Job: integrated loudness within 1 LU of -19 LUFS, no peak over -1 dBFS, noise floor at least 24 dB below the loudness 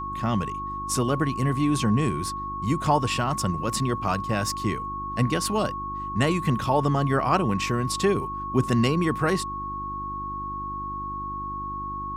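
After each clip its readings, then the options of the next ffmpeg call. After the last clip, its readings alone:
hum 50 Hz; harmonics up to 350 Hz; hum level -37 dBFS; steady tone 1100 Hz; tone level -30 dBFS; loudness -26.0 LUFS; peak -8.5 dBFS; loudness target -19.0 LUFS
-> -af "bandreject=f=50:t=h:w=4,bandreject=f=100:t=h:w=4,bandreject=f=150:t=h:w=4,bandreject=f=200:t=h:w=4,bandreject=f=250:t=h:w=4,bandreject=f=300:t=h:w=4,bandreject=f=350:t=h:w=4"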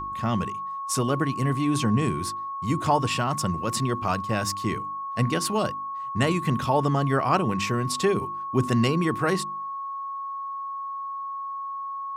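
hum none; steady tone 1100 Hz; tone level -30 dBFS
-> -af "bandreject=f=1.1k:w=30"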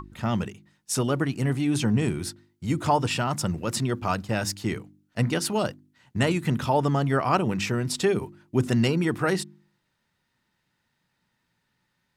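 steady tone none; loudness -26.0 LUFS; peak -8.5 dBFS; loudness target -19.0 LUFS
-> -af "volume=7dB"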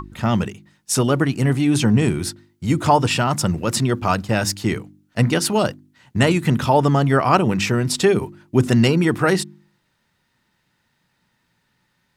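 loudness -19.0 LUFS; peak -1.5 dBFS; noise floor -68 dBFS

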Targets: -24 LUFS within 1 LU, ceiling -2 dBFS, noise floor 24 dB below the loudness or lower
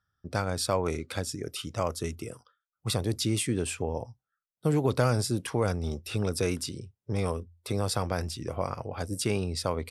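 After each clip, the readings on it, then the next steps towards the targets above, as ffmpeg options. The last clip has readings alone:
loudness -30.5 LUFS; peak -10.0 dBFS; loudness target -24.0 LUFS
-> -af "volume=6.5dB"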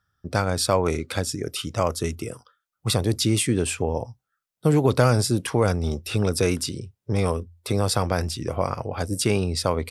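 loudness -24.0 LUFS; peak -3.5 dBFS; noise floor -82 dBFS

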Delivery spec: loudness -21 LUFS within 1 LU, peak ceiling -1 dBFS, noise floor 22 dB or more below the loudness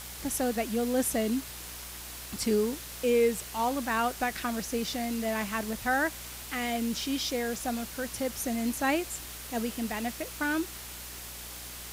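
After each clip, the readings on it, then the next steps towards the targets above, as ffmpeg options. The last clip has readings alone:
hum 60 Hz; harmonics up to 420 Hz; hum level -47 dBFS; noise floor -43 dBFS; noise floor target -53 dBFS; loudness -31.0 LUFS; peak -15.0 dBFS; loudness target -21.0 LUFS
-> -af "bandreject=f=60:t=h:w=4,bandreject=f=120:t=h:w=4,bandreject=f=180:t=h:w=4,bandreject=f=240:t=h:w=4,bandreject=f=300:t=h:w=4,bandreject=f=360:t=h:w=4,bandreject=f=420:t=h:w=4"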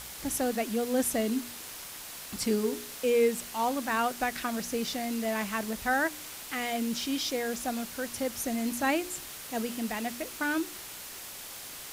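hum none; noise floor -43 dBFS; noise floor target -54 dBFS
-> -af "afftdn=nr=11:nf=-43"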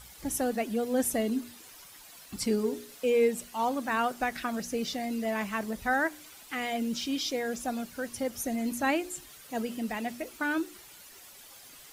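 noise floor -51 dBFS; noise floor target -53 dBFS
-> -af "afftdn=nr=6:nf=-51"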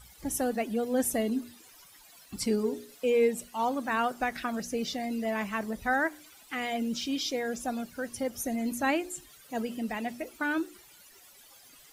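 noise floor -56 dBFS; loudness -31.0 LUFS; peak -15.5 dBFS; loudness target -21.0 LUFS
-> -af "volume=10dB"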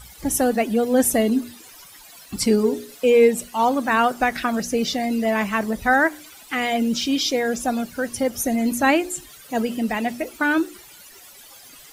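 loudness -21.0 LUFS; peak -5.5 dBFS; noise floor -46 dBFS

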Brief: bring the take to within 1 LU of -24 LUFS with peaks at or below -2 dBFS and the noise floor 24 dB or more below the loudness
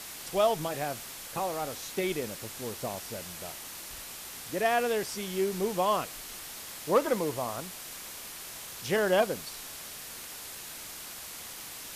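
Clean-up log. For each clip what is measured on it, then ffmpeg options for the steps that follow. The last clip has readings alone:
noise floor -43 dBFS; noise floor target -57 dBFS; loudness -32.5 LUFS; peak -13.0 dBFS; loudness target -24.0 LUFS
-> -af "afftdn=nr=14:nf=-43"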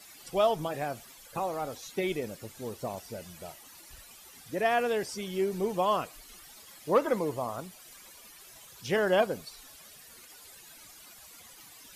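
noise floor -52 dBFS; noise floor target -55 dBFS
-> -af "afftdn=nr=6:nf=-52"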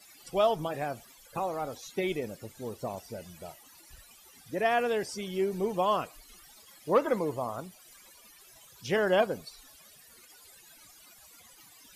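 noise floor -56 dBFS; loudness -31.0 LUFS; peak -13.5 dBFS; loudness target -24.0 LUFS
-> -af "volume=7dB"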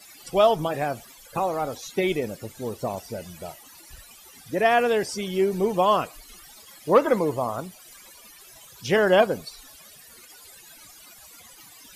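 loudness -24.0 LUFS; peak -6.5 dBFS; noise floor -49 dBFS

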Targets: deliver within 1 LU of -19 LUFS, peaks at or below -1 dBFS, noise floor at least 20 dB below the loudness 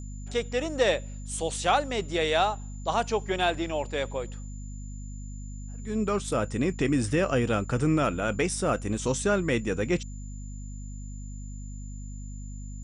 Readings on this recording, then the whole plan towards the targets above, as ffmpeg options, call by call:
hum 50 Hz; harmonics up to 250 Hz; hum level -36 dBFS; steady tone 7100 Hz; tone level -51 dBFS; loudness -27.5 LUFS; peak -10.5 dBFS; loudness target -19.0 LUFS
-> -af "bandreject=f=50:t=h:w=6,bandreject=f=100:t=h:w=6,bandreject=f=150:t=h:w=6,bandreject=f=200:t=h:w=6,bandreject=f=250:t=h:w=6"
-af "bandreject=f=7.1k:w=30"
-af "volume=8.5dB"

